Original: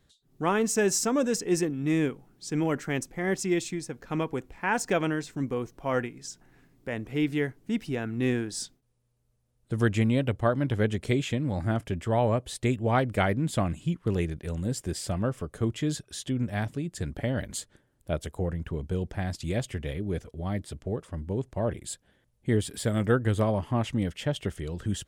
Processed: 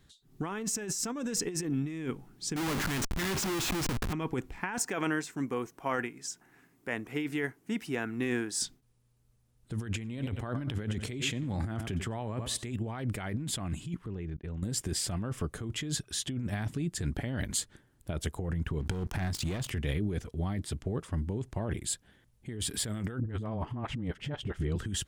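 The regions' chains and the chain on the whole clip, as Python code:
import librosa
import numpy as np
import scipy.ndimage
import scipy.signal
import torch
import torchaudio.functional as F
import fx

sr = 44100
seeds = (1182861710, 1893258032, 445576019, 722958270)

y = fx.chain(x, sr, fx.lowpass(hz=7100.0, slope=12),
    fx.schmitt(flips_db=-45.0), at=(2.56, 4.13))
y = fx.chain(y, sr, fx.highpass(hz=460.0, slope=6),
    fx.peak_eq(hz=4000.0, db=-6.0, octaves=1.1), at=(4.78, 8.61))
y = fx.chain(y, sr, fx.highpass(hz=56.0, slope=12),
    fx.echo_feedback(ms=92, feedback_pct=28, wet_db=-17), at=(9.86, 12.72))
y = fx.chain(y, sr, fx.level_steps(step_db=20),
    fx.spacing_loss(db_at_10k=25), at=(14.06, 14.63))
y = fx.chain(y, sr, fx.leveller(passes=3),
    fx.over_compress(threshold_db=-28.0, ratio=-0.5),
    fx.overflow_wrap(gain_db=14.0), at=(18.8, 19.7))
y = fx.chain(y, sr, fx.lowpass(hz=1400.0, slope=6),
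    fx.dispersion(late='highs', ms=45.0, hz=380.0), at=(23.2, 24.76))
y = fx.peak_eq(y, sr, hz=560.0, db=-7.0, octaves=0.65)
y = fx.over_compress(y, sr, threshold_db=-33.0, ratio=-1.0)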